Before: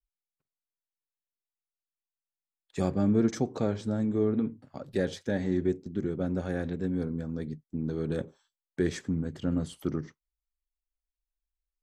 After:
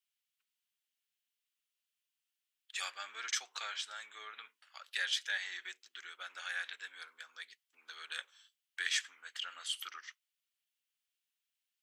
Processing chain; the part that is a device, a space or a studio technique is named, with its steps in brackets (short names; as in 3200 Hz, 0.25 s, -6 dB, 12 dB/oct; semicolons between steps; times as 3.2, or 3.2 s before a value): headphones lying on a table (HPF 1400 Hz 24 dB/oct; bell 3000 Hz +8.5 dB 0.59 oct); gain +5.5 dB